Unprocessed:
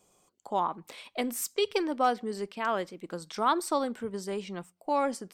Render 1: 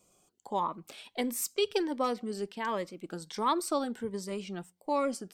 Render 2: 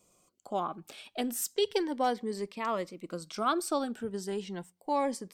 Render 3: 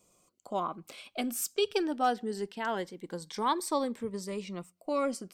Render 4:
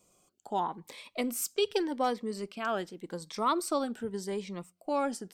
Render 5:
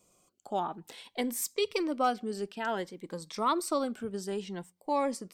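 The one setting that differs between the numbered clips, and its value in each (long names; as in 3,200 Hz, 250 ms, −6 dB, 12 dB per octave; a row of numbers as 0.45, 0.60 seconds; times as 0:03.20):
phaser whose notches keep moving one way, speed: 1.4, 0.35, 0.22, 0.86, 0.57 Hertz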